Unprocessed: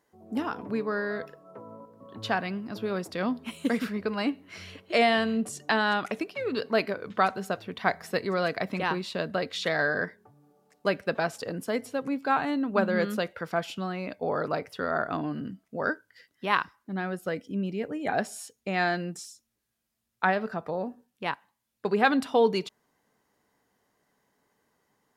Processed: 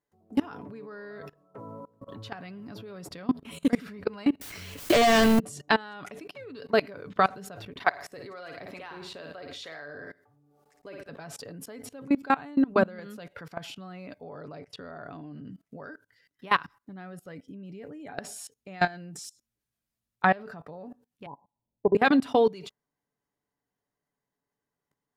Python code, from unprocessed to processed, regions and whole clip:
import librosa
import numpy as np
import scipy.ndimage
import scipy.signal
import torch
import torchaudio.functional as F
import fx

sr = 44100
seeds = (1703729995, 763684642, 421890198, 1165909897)

y = fx.chain(x, sr, fx.leveller(passes=5),
    fx.brickwall_lowpass(high_hz=8900.0),
    fx.quant_dither(seeds[0], bits=6, dither='triangular'), at=(4.41, 5.39))
y = fx.chain(y, sr, fx.peak_eq(hz=180.0, db=-12.5, octaves=0.58),
    fx.harmonic_tremolo(hz=2.2, depth_pct=50, crossover_hz=500.0),
    fx.room_flutter(wall_m=9.5, rt60_s=0.35), at=(7.7, 11.09))
y = fx.chain(y, sr, fx.lowpass(hz=8600.0, slope=12),
    fx.peak_eq(hz=1400.0, db=-3.5, octaves=0.9), at=(14.33, 15.53))
y = fx.chain(y, sr, fx.steep_lowpass(hz=1000.0, slope=96),
    fx.dynamic_eq(hz=420.0, q=0.71, threshold_db=-38.0, ratio=4.0, max_db=4), at=(21.26, 21.95))
y = fx.low_shelf(y, sr, hz=160.0, db=8.5)
y = y + 0.32 * np.pad(y, (int(7.0 * sr / 1000.0), 0))[:len(y)]
y = fx.level_steps(y, sr, step_db=23)
y = y * 10.0 ** (4.0 / 20.0)